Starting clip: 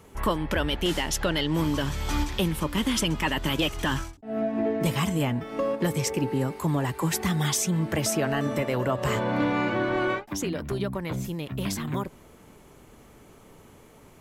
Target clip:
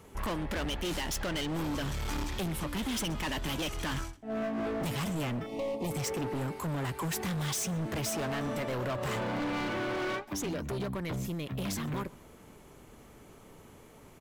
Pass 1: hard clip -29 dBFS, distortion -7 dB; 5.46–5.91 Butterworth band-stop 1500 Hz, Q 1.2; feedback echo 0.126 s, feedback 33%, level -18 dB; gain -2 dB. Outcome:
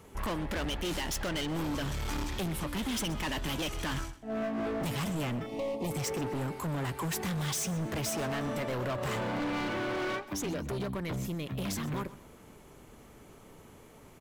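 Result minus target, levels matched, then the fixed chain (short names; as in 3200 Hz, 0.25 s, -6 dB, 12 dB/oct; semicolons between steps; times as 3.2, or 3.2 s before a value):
echo-to-direct +7.5 dB
hard clip -29 dBFS, distortion -7 dB; 5.46–5.91 Butterworth band-stop 1500 Hz, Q 1.2; feedback echo 0.126 s, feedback 33%, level -25.5 dB; gain -2 dB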